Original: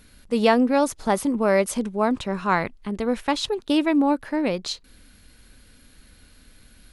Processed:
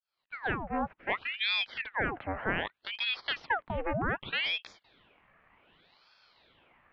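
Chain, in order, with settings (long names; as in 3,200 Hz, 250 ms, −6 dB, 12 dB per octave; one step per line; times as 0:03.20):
fade in at the beginning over 1.87 s
brickwall limiter −18 dBFS, peak gain reduction 10.5 dB
single-sideband voice off tune −60 Hz 360–2,200 Hz
ring modulator whose carrier an LFO sweeps 1,600 Hz, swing 85%, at 0.65 Hz
level +1.5 dB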